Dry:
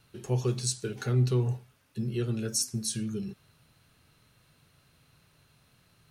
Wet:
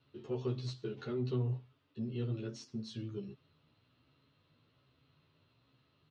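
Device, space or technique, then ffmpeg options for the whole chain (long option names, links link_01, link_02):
barber-pole flanger into a guitar amplifier: -filter_complex "[0:a]asplit=2[link_01][link_02];[link_02]adelay=11.9,afreqshift=1.2[link_03];[link_01][link_03]amix=inputs=2:normalize=1,asoftclip=type=tanh:threshold=-24.5dB,highpass=95,equalizer=frequency=190:width_type=q:width=4:gain=-9,equalizer=frequency=270:width_type=q:width=4:gain=6,equalizer=frequency=770:width_type=q:width=4:gain=-6,equalizer=frequency=1600:width_type=q:width=4:gain=-8,equalizer=frequency=2300:width_type=q:width=4:gain=-6,lowpass=frequency=3800:width=0.5412,lowpass=frequency=3800:width=1.3066,volume=-1.5dB"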